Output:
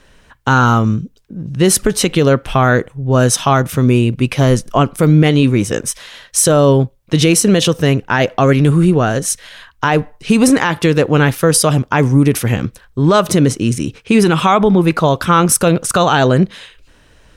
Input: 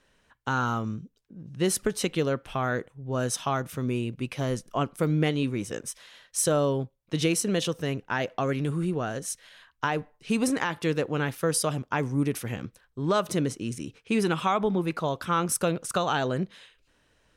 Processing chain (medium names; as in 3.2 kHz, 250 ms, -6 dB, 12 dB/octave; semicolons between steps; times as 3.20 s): bass shelf 98 Hz +8 dB; loudness maximiser +16.5 dB; trim -1 dB